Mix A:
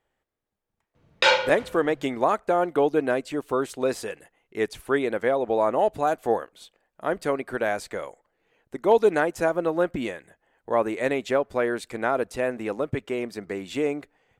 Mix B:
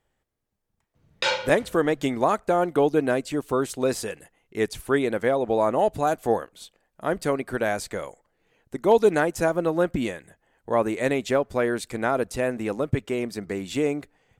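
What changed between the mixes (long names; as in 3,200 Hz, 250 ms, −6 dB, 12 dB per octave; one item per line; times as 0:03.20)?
background −6.5 dB
master: add bass and treble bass +7 dB, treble +6 dB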